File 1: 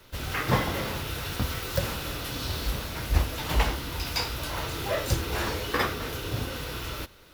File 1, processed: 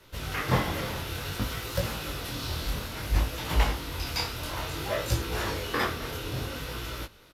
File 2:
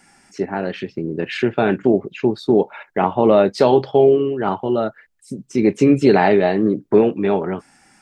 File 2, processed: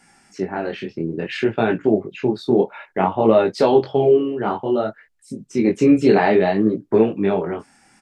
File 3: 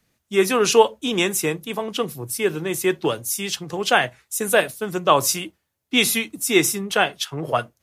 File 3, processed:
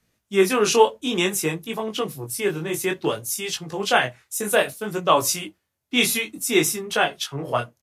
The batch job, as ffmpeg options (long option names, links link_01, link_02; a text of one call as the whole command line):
ffmpeg -i in.wav -af "flanger=delay=17.5:depth=7.6:speed=0.58,aresample=32000,aresample=44100,volume=1.5dB" out.wav